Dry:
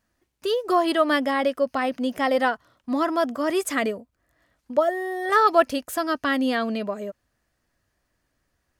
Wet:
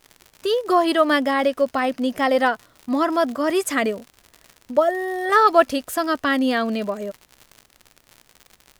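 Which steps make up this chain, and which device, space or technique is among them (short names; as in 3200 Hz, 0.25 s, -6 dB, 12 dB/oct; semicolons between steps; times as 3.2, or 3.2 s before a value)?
vinyl LP (crackle 100/s -34 dBFS; pink noise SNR 42 dB); gain +3 dB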